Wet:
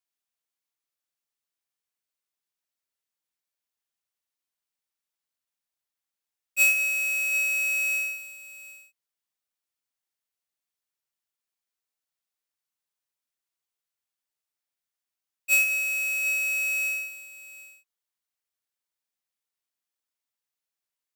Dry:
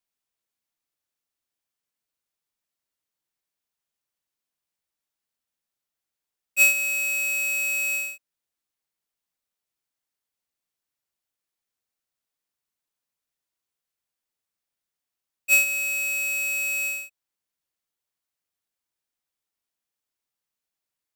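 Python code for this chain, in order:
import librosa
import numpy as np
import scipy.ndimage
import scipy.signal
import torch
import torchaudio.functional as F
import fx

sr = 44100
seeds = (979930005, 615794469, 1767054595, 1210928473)

y = fx.low_shelf(x, sr, hz=490.0, db=-6.5)
y = fx.echo_multitap(y, sr, ms=(73, 193, 743), db=(-10.0, -17.5, -16.0))
y = F.gain(torch.from_numpy(y), -3.0).numpy()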